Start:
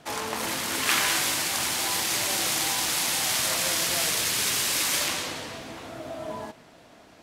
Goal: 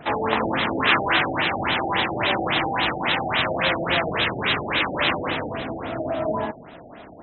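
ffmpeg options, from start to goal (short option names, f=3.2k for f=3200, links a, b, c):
-af "apsyclip=19dB,afftfilt=real='re*lt(b*sr/1024,810*pow(4100/810,0.5+0.5*sin(2*PI*3.6*pts/sr)))':imag='im*lt(b*sr/1024,810*pow(4100/810,0.5+0.5*sin(2*PI*3.6*pts/sr)))':win_size=1024:overlap=0.75,volume=-8.5dB"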